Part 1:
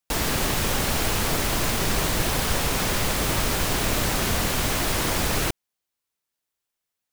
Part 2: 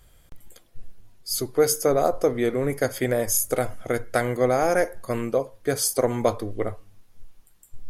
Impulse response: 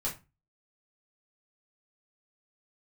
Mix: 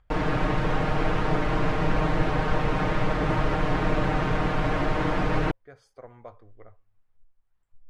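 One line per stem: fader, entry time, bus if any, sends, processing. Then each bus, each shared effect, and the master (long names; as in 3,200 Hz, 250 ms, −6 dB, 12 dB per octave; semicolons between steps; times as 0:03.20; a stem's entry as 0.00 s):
−1.0 dB, 0.00 s, no send, comb filter 6.5 ms, depth 94%
−16.0 dB, 0.00 s, no send, parametric band 280 Hz −12 dB 2.2 octaves; upward compression, threshold −38 dBFS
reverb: not used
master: low-pass filter 1,600 Hz 12 dB per octave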